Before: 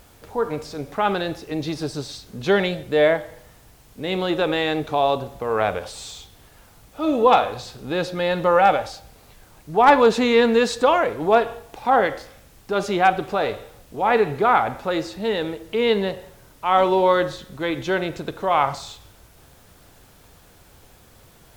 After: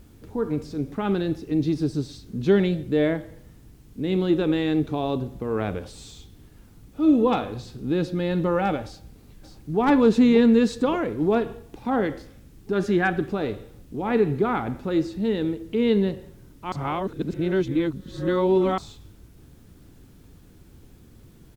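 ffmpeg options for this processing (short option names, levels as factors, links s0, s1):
-filter_complex "[0:a]asplit=2[s0][s1];[s1]afade=t=in:st=8.85:d=0.01,afade=t=out:st=9.79:d=0.01,aecho=0:1:580|1160|1740|2320|2900|3480:0.421697|0.210848|0.105424|0.0527121|0.026356|0.013178[s2];[s0][s2]amix=inputs=2:normalize=0,asettb=1/sr,asplit=3[s3][s4][s5];[s3]atrim=end=12.734[s6];[s4]atrim=start=12.73:end=13.29,asetpts=PTS-STARTPTS,afade=t=in:d=0.004:c=qsin,afade=t=out:st=0.556:d=0.004:c=qsin,equalizer=f=1700:t=o:w=0.24:g=15[s7];[s5]atrim=start=13.286[s8];[s6][s7]acrossfade=d=0.004:c1=hsin:c2=qsin[s9];[s9][s8]acrossfade=d=0.004:c1=qsin:c2=hsin,asplit=3[s10][s11][s12];[s10]atrim=end=16.722[s13];[s11]atrim=start=16.718:end=18.782,asetpts=PTS-STARTPTS,areverse[s14];[s12]atrim=start=18.778[s15];[s13][s14]acrossfade=d=0.004:c1=hsin:c2=hsin[s16];[s16][s15]acrossfade=d=0.004:c1=hsin:c2=hsin,lowshelf=f=440:t=q:w=1.5:g=11.5,volume=0.376"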